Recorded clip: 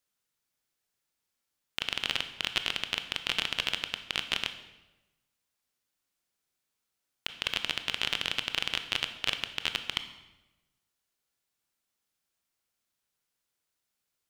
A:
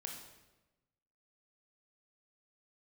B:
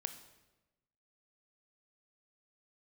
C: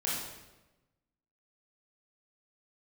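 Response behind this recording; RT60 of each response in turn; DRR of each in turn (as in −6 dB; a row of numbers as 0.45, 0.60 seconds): B; 1.1, 1.1, 1.1 seconds; 0.5, 8.5, −7.0 decibels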